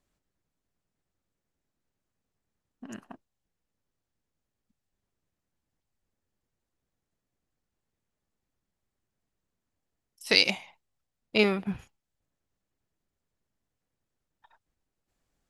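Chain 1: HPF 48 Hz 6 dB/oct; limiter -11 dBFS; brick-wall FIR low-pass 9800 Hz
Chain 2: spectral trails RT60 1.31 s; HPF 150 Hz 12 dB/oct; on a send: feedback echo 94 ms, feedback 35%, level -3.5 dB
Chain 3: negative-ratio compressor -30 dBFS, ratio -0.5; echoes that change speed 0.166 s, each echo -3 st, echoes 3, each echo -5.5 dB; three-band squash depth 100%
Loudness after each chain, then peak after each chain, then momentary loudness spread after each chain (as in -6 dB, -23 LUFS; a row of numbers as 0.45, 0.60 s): -28.0, -21.0, -43.5 LUFS; -11.0, -2.5, -18.5 dBFS; 20, 23, 12 LU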